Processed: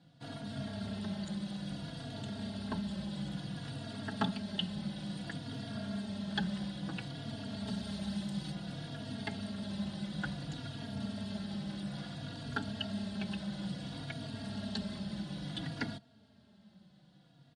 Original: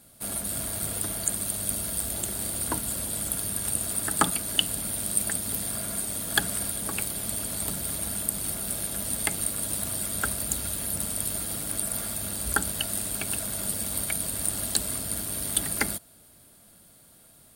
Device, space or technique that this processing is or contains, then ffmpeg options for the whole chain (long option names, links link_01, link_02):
barber-pole flanger into a guitar amplifier: -filter_complex "[0:a]asplit=2[link_01][link_02];[link_02]adelay=3.6,afreqshift=-0.58[link_03];[link_01][link_03]amix=inputs=2:normalize=1,asoftclip=type=tanh:threshold=-21dB,highpass=96,equalizer=frequency=140:width_type=q:width=4:gain=7,equalizer=frequency=200:width_type=q:width=4:gain=9,equalizer=frequency=370:width_type=q:width=4:gain=-5,equalizer=frequency=530:width_type=q:width=4:gain=-5,equalizer=frequency=1200:width_type=q:width=4:gain=-8,equalizer=frequency=2300:width_type=q:width=4:gain=-9,lowpass=frequency=4200:width=0.5412,lowpass=frequency=4200:width=1.3066,asettb=1/sr,asplit=3[link_04][link_05][link_06];[link_04]atrim=end=7.674[link_07];[link_05]atrim=start=7.67:end=8.52,asetpts=PTS-STARTPTS,afade=type=in:duration=0.004:curve=qsin,afade=type=out:start_time=0.846:duration=0.004:curve=qsin,highshelf=frequency=4700:gain=7[link_08];[link_06]atrim=start=8.516[link_09];[link_07][link_08]acrossfade=duration=0.004:curve1=hsin:curve2=qsin[link_10];[link_10][link_09]acrossfade=duration=0.004:curve1=qsin:curve2=hsin,volume=-1dB"